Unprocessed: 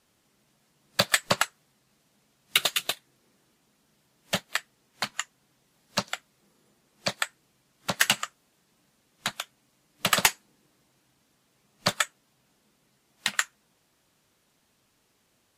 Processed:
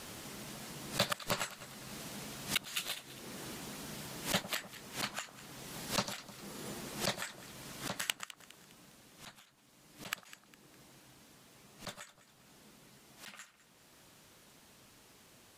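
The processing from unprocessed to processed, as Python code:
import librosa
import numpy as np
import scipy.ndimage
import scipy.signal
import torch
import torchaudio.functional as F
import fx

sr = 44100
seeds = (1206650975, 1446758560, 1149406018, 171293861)

p1 = fx.auto_swell(x, sr, attack_ms=578.0)
p2 = fx.rider(p1, sr, range_db=10, speed_s=0.5)
p3 = fx.gate_flip(p2, sr, shuts_db=-33.0, range_db=-26)
p4 = p3 + fx.echo_alternate(p3, sr, ms=102, hz=1200.0, feedback_pct=66, wet_db=-12, dry=0)
y = p4 * 10.0 ** (16.5 / 20.0)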